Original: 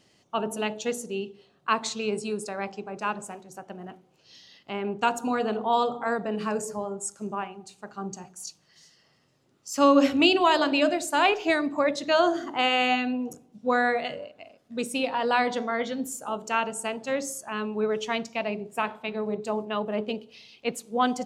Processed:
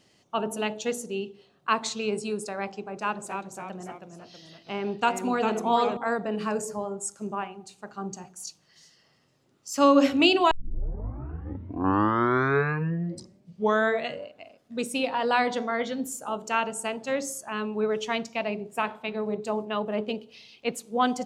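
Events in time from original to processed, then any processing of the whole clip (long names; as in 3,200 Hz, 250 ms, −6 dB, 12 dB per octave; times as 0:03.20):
0:02.97–0:05.97: delay with pitch and tempo change per echo 277 ms, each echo −1 semitone, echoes 3, each echo −6 dB
0:10.51: tape start 3.67 s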